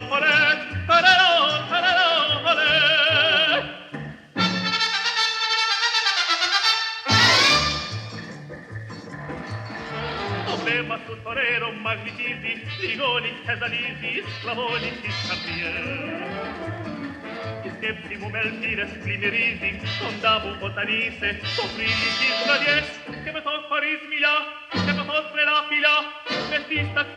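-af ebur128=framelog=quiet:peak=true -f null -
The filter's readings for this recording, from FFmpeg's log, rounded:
Integrated loudness:
  I:         -20.8 LUFS
  Threshold: -31.4 LUFS
Loudness range:
  LRA:        10.4 LU
  Threshold: -41.9 LUFS
  LRA low:   -28.4 LUFS
  LRA high:  -18.0 LUFS
True peak:
  Peak:       -3.5 dBFS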